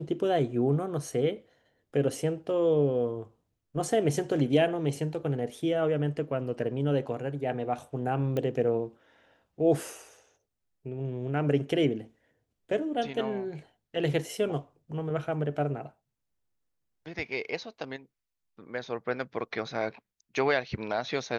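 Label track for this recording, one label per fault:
8.370000	8.370000	click −19 dBFS

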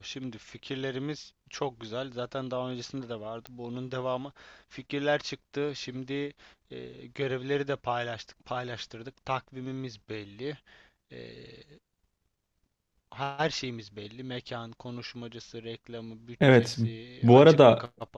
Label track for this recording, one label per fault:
3.470000	3.470000	click −24 dBFS

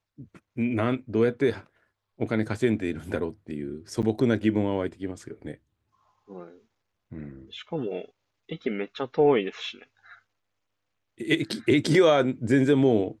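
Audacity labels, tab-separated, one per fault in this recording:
4.020000	4.030000	drop-out 8.4 ms

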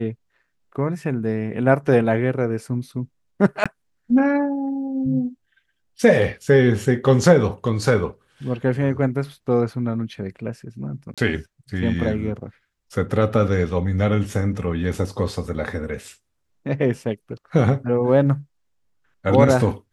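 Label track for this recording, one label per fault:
3.640000	3.660000	drop-out 16 ms
11.140000	11.180000	drop-out 36 ms

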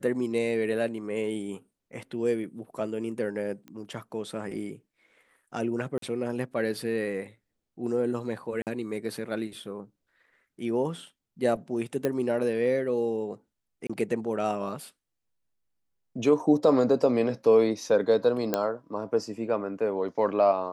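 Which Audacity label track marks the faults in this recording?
3.680000	3.680000	click −30 dBFS
5.980000	6.020000	drop-out 43 ms
8.620000	8.670000	drop-out 48 ms
12.050000	12.050000	click −14 dBFS
13.870000	13.890000	drop-out 25 ms
18.540000	18.540000	click −11 dBFS

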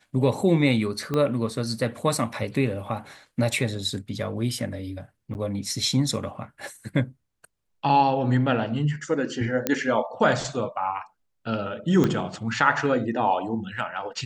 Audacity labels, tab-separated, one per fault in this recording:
1.140000	1.140000	click −14 dBFS
5.340000	5.350000	drop-out 9.5 ms
9.670000	9.670000	click −7 dBFS
12.040000	12.040000	click −10 dBFS

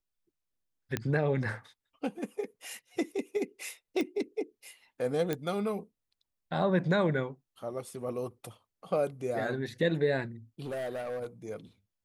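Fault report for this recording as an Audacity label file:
0.970000	0.970000	click −15 dBFS
4.010000	4.010000	click −20 dBFS
5.330000	5.330000	click −17 dBFS
10.600000	11.260000	clipping −32.5 dBFS

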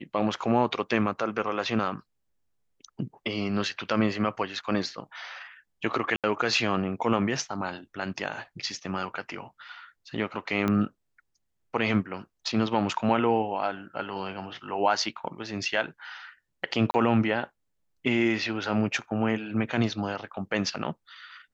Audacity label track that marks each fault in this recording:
6.160000	6.240000	drop-out 77 ms
10.680000	10.680000	click −14 dBFS
16.910000	16.940000	drop-out 30 ms

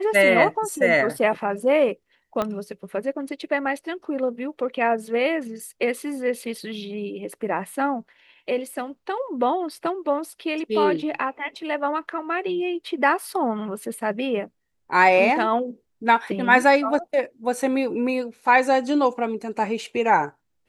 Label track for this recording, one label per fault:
2.420000	2.420000	click −12 dBFS

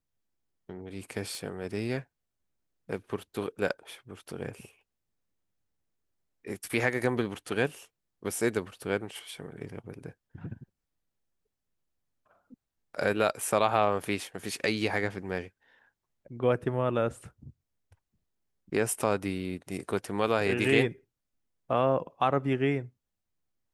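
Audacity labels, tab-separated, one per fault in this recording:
1.350000	1.350000	click

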